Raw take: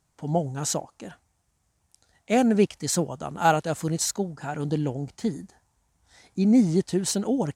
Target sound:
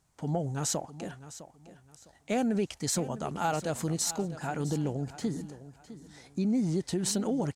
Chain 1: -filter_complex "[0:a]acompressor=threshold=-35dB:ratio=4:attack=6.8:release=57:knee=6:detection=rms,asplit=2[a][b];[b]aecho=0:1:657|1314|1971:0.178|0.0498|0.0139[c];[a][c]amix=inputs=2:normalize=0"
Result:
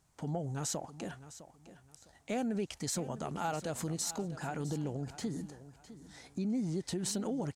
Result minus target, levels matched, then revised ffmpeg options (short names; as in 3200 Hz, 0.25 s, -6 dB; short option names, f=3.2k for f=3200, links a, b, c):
compressor: peak gain reduction +6 dB
-filter_complex "[0:a]acompressor=threshold=-27dB:ratio=4:attack=6.8:release=57:knee=6:detection=rms,asplit=2[a][b];[b]aecho=0:1:657|1314|1971:0.178|0.0498|0.0139[c];[a][c]amix=inputs=2:normalize=0"